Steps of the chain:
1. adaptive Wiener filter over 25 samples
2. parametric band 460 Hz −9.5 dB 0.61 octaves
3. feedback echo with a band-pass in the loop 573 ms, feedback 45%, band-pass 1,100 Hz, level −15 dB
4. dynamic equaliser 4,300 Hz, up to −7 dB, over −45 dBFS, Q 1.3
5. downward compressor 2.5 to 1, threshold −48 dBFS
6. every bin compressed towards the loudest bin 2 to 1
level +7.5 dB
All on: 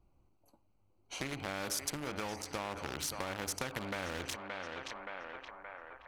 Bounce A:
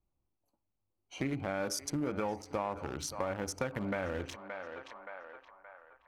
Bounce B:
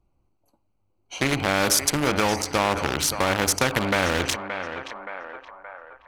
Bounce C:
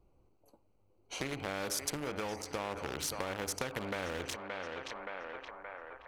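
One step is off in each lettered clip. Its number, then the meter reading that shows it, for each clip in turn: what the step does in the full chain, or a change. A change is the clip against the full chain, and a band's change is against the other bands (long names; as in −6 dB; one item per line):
6, 4 kHz band −7.5 dB
5, average gain reduction 11.5 dB
2, 500 Hz band +3.0 dB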